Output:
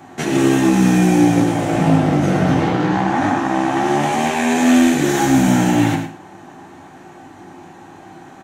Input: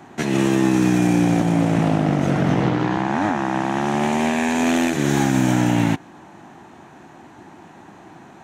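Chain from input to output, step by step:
high-shelf EQ 7,900 Hz +5 dB
single-tap delay 104 ms −10 dB
reverb whose tail is shaped and stops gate 140 ms falling, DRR 0.5 dB

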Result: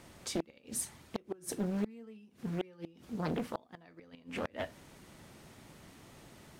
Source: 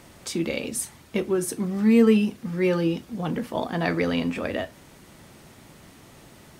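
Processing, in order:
gate with flip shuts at −16 dBFS, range −28 dB
highs frequency-modulated by the lows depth 0.77 ms
level −6 dB

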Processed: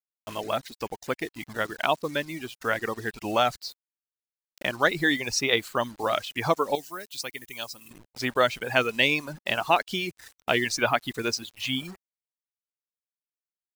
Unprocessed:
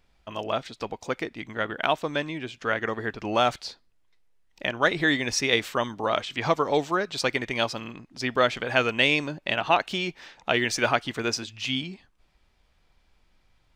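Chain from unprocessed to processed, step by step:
bit reduction 7 bits
reverb reduction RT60 0.96 s
0:06.75–0:07.91: first-order pre-emphasis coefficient 0.8

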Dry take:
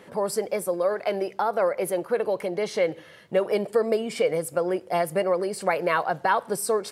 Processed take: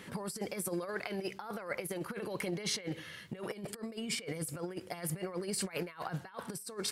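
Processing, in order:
parametric band 600 Hz −14 dB 1.7 octaves
compressor whose output falls as the input rises −38 dBFS, ratio −0.5

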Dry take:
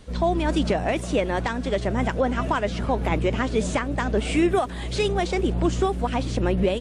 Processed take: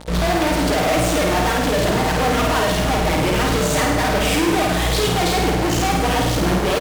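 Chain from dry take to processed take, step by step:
parametric band 690 Hz +6 dB 0.34 octaves
comb filter 6.5 ms, depth 96%
fuzz pedal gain 41 dB, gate −39 dBFS
hum with harmonics 60 Hz, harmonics 15, −35 dBFS
on a send: flutter between parallel walls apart 8.9 metres, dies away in 0.95 s
on the sum: level −6 dB

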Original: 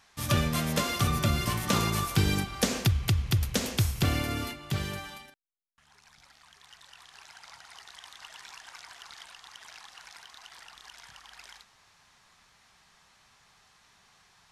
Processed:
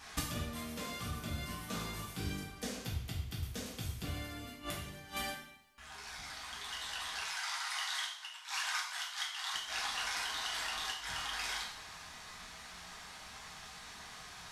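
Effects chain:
0:07.21–0:09.54: high-pass filter 810 Hz 24 dB per octave
gate with flip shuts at −31 dBFS, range −25 dB
coupled-rooms reverb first 0.58 s, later 1.7 s, from −21 dB, DRR −5.5 dB
level +5.5 dB

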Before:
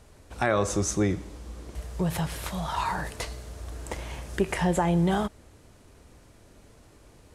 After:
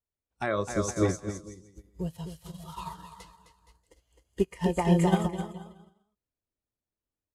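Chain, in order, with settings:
noise reduction from a noise print of the clip's start 12 dB
bouncing-ball delay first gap 260 ms, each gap 0.8×, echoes 5
expander for the loud parts 2.5 to 1, over −41 dBFS
level +2 dB

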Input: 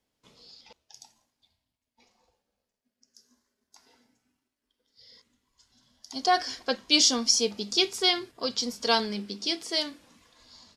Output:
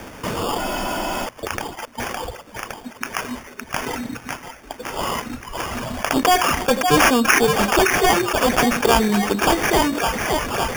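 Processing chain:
on a send: echo with a time of its own for lows and highs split 580 Hz, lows 91 ms, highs 562 ms, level −13.5 dB
on the sum: reverb reduction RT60 1.1 s
decimation without filtering 11×
frozen spectrum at 0:00.60, 0.65 s
envelope flattener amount 70%
level +4.5 dB

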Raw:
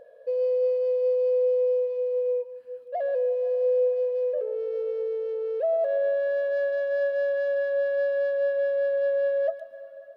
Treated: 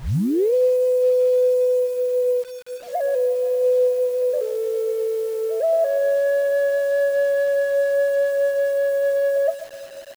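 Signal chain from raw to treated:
turntable start at the beginning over 0.54 s
echo ahead of the sound 121 ms −18 dB
bit reduction 8 bits
level +5.5 dB

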